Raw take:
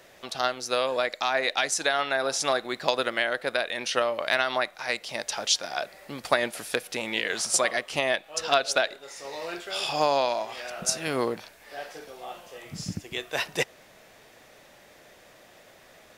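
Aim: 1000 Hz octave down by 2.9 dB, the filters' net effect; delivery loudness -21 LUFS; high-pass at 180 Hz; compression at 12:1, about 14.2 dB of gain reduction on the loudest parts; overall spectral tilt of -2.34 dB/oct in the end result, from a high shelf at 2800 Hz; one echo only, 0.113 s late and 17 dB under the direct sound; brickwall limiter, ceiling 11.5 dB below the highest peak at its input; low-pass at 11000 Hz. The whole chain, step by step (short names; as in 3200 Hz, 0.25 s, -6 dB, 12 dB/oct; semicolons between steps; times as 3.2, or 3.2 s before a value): HPF 180 Hz; LPF 11000 Hz; bell 1000 Hz -3 dB; high shelf 2800 Hz -7.5 dB; compressor 12:1, threshold -34 dBFS; limiter -27.5 dBFS; echo 0.113 s -17 dB; gain +19.5 dB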